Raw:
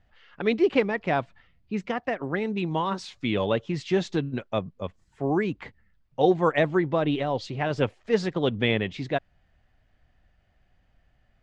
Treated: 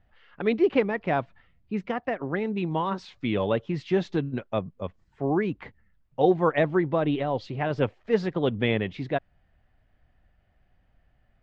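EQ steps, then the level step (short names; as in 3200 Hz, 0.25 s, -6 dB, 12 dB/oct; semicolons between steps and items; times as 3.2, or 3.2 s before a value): LPF 5900 Hz 12 dB/oct; high shelf 3600 Hz -9 dB; 0.0 dB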